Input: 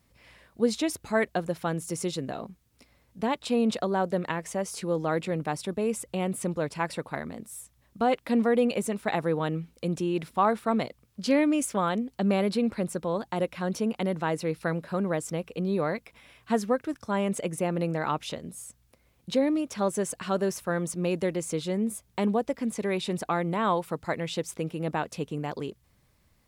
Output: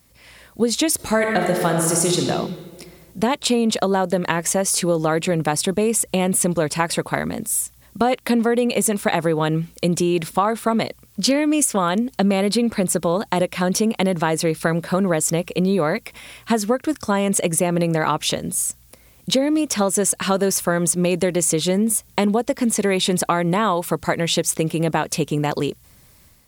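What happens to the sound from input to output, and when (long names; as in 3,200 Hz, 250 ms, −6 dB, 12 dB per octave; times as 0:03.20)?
0:00.95–0:02.18: thrown reverb, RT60 1.7 s, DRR 1.5 dB
whole clip: automatic gain control gain up to 6.5 dB; high-shelf EQ 4,900 Hz +10.5 dB; downward compressor, threshold −21 dBFS; level +6 dB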